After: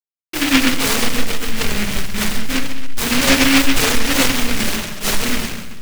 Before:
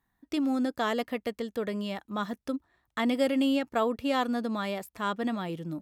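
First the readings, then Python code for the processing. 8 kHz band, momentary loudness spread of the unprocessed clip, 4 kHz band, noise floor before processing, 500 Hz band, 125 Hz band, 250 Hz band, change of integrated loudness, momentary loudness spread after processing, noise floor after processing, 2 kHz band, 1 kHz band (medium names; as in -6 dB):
+31.0 dB, 9 LU, +20.5 dB, -80 dBFS, +5.0 dB, no reading, +9.0 dB, +13.0 dB, 10 LU, under -85 dBFS, +18.5 dB, +7.5 dB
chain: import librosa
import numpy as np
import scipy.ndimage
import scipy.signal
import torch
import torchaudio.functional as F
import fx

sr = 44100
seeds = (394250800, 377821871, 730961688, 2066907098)

y = fx.delta_hold(x, sr, step_db=-26.5)
y = fx.high_shelf(y, sr, hz=7800.0, db=10.5)
y = fx.echo_feedback(y, sr, ms=138, feedback_pct=43, wet_db=-10)
y = fx.room_shoebox(y, sr, seeds[0], volume_m3=110.0, walls='mixed', distance_m=2.8)
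y = fx.noise_mod_delay(y, sr, seeds[1], noise_hz=2100.0, depth_ms=0.41)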